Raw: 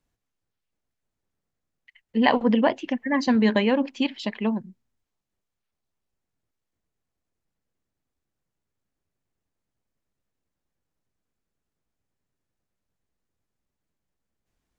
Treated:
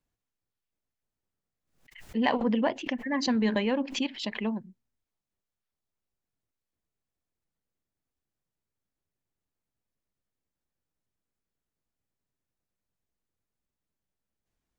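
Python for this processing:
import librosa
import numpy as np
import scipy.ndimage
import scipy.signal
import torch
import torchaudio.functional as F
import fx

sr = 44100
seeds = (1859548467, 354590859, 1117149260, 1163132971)

p1 = 10.0 ** (-14.5 / 20.0) * np.tanh(x / 10.0 ** (-14.5 / 20.0))
p2 = x + (p1 * librosa.db_to_amplitude(-11.0))
p3 = fx.pre_swell(p2, sr, db_per_s=110.0)
y = p3 * librosa.db_to_amplitude(-8.0)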